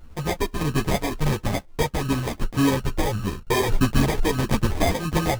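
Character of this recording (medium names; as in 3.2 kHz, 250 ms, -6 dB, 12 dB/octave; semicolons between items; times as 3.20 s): a buzz of ramps at a fixed pitch in blocks of 16 samples; phasing stages 12, 1.6 Hz, lowest notch 160–1100 Hz; aliases and images of a low sample rate 1.4 kHz, jitter 0%; a shimmering, thickened sound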